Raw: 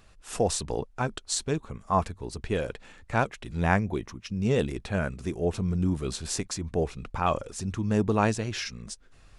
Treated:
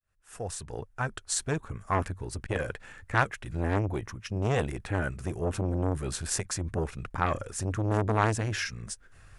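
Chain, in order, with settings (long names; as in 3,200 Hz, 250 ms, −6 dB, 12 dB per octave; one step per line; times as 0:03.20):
fade in at the beginning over 1.61 s
graphic EQ with 15 bands 100 Hz +8 dB, 250 Hz −4 dB, 1,600 Hz +8 dB, 4,000 Hz −4 dB, 10,000 Hz +6 dB
saturating transformer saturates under 1,200 Hz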